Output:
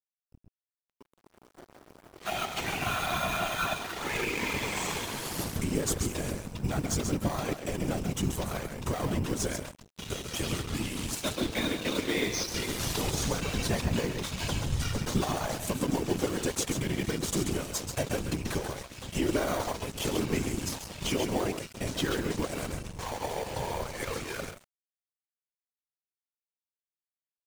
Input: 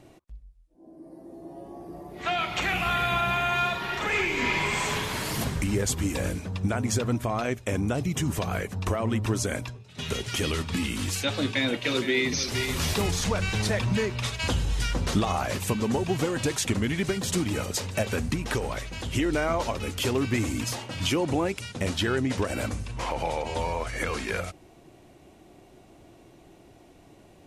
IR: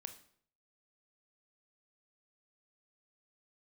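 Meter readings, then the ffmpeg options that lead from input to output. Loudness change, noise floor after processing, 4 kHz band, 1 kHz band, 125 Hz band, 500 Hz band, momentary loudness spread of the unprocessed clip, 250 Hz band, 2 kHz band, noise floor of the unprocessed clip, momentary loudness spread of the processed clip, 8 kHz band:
-4.0 dB, under -85 dBFS, -4.0 dB, -5.0 dB, -5.0 dB, -4.0 dB, 7 LU, -3.5 dB, -6.0 dB, -54 dBFS, 6 LU, -1.5 dB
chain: -filter_complex "[0:a]asplit=2[s0][s1];[s1]acrusher=samples=17:mix=1:aa=0.000001,volume=0.501[s2];[s0][s2]amix=inputs=2:normalize=0,aecho=1:1:135:0.473,afftfilt=real='hypot(re,im)*cos(2*PI*random(0))':imag='hypot(re,im)*sin(2*PI*random(1))':win_size=512:overlap=0.75,aeval=exprs='sgn(val(0))*max(abs(val(0))-0.00794,0)':c=same,bass=f=250:g=-1,treble=f=4000:g=5"

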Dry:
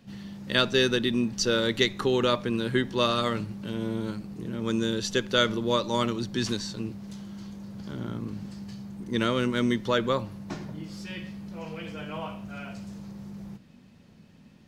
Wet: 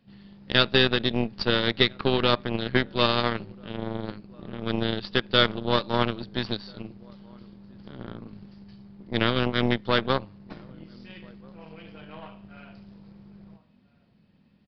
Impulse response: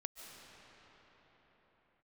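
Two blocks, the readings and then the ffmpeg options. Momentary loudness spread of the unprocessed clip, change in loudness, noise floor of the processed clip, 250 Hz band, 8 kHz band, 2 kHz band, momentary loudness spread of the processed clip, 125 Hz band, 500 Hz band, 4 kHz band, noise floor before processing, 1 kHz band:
16 LU, +3.0 dB, -61 dBFS, -1.0 dB, under -20 dB, +3.0 dB, 22 LU, +2.0 dB, 0.0 dB, +3.5 dB, -54 dBFS, +2.5 dB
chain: -filter_complex "[0:a]asplit=2[s0][s1];[s1]adelay=1341,volume=0.112,highshelf=f=4000:g=-30.2[s2];[s0][s2]amix=inputs=2:normalize=0,aeval=exprs='0.447*(cos(1*acos(clip(val(0)/0.447,-1,1)))-cos(1*PI/2))+0.02*(cos(3*acos(clip(val(0)/0.447,-1,1)))-cos(3*PI/2))+0.0316*(cos(5*acos(clip(val(0)/0.447,-1,1)))-cos(5*PI/2))+0.0631*(cos(7*acos(clip(val(0)/0.447,-1,1)))-cos(7*PI/2))+0.02*(cos(8*acos(clip(val(0)/0.447,-1,1)))-cos(8*PI/2))':c=same,aresample=11025,aresample=44100,volume=1.58"

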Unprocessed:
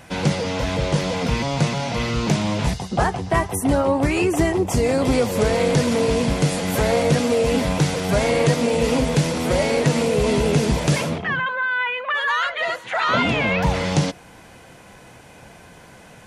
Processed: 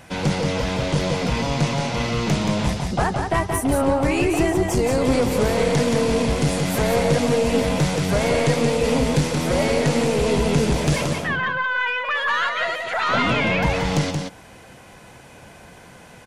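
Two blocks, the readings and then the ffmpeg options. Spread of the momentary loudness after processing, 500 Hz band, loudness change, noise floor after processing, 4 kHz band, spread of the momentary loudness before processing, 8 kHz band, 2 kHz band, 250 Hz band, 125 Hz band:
4 LU, -0.5 dB, -0.5 dB, -45 dBFS, 0.0 dB, 4 LU, -0.5 dB, 0.0 dB, 0.0 dB, -0.5 dB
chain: -filter_complex "[0:a]aeval=exprs='(tanh(3.55*val(0)+0.3)-tanh(0.3))/3.55':c=same,asplit=2[s0][s1];[s1]aecho=0:1:177:0.562[s2];[s0][s2]amix=inputs=2:normalize=0"

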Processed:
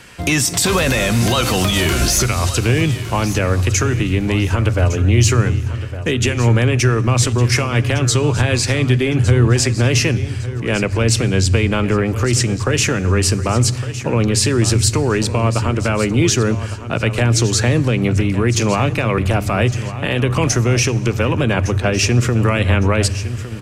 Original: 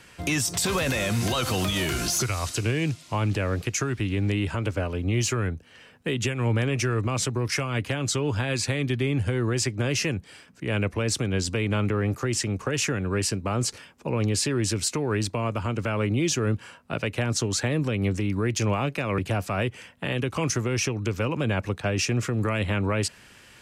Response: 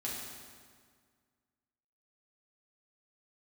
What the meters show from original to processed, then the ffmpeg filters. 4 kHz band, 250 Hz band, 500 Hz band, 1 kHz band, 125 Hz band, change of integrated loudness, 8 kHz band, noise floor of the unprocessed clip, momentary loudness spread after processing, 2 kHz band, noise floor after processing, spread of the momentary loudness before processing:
+9.5 dB, +9.0 dB, +9.5 dB, +9.5 dB, +11.5 dB, +10.0 dB, +9.5 dB, -52 dBFS, 4 LU, +9.5 dB, -25 dBFS, 4 LU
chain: -filter_complex "[0:a]aecho=1:1:1159|2318|3477:0.211|0.0634|0.019,asplit=2[s0][s1];[s1]asubboost=boost=11:cutoff=68[s2];[1:a]atrim=start_sample=2205,lowshelf=f=190:g=12[s3];[s2][s3]afir=irnorm=-1:irlink=0,volume=0.126[s4];[s0][s4]amix=inputs=2:normalize=0,volume=2.66"

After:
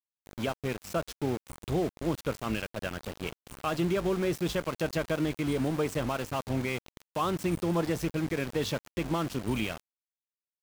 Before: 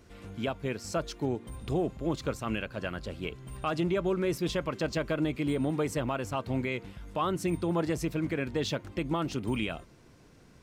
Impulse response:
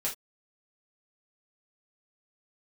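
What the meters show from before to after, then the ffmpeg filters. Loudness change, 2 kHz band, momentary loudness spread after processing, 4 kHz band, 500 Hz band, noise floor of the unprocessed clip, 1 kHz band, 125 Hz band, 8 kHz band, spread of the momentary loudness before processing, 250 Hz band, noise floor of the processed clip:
+0.5 dB, +0.5 dB, 8 LU, +0.5 dB, +0.5 dB, -57 dBFS, +0.5 dB, +0.5 dB, +1.0 dB, 7 LU, 0.0 dB, under -85 dBFS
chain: -filter_complex "[0:a]asplit=2[s0][s1];[1:a]atrim=start_sample=2205,highshelf=f=2000:g=-10.5[s2];[s1][s2]afir=irnorm=-1:irlink=0,volume=0.0794[s3];[s0][s3]amix=inputs=2:normalize=0,aeval=exprs='val(0)*gte(abs(val(0)),0.0168)':c=same"

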